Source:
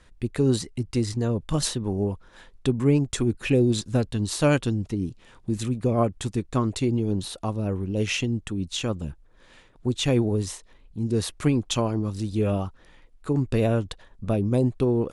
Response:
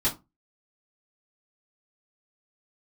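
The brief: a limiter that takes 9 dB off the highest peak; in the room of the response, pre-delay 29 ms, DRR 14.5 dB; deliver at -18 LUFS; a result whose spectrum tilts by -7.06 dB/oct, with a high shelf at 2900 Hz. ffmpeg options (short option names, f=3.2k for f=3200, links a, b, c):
-filter_complex "[0:a]highshelf=f=2.9k:g=-8.5,alimiter=limit=-18.5dB:level=0:latency=1,asplit=2[a][b];[1:a]atrim=start_sample=2205,adelay=29[c];[b][c]afir=irnorm=-1:irlink=0,volume=-24dB[d];[a][d]amix=inputs=2:normalize=0,volume=11dB"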